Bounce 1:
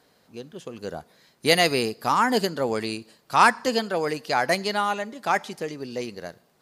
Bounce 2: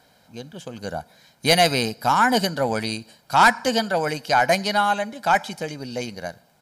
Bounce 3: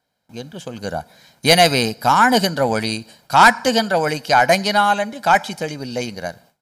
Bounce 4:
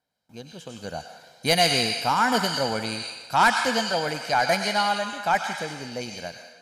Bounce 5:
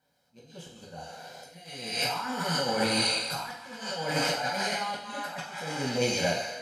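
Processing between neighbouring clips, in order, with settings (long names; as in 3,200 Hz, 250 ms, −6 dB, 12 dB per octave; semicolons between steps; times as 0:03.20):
comb filter 1.3 ms, depth 58%; soft clipping −10 dBFS, distortion −16 dB; level +3.5 dB
noise gate with hold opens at −45 dBFS; level +4.5 dB
on a send at −8 dB: meter weighting curve ITU-R 468 + convolution reverb RT60 1.6 s, pre-delay 90 ms; on the sum: level −8.5 dB
compressor whose output falls as the input rises −32 dBFS, ratio −1; volume swells 709 ms; coupled-rooms reverb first 0.58 s, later 1.5 s, DRR −5 dB; level −3.5 dB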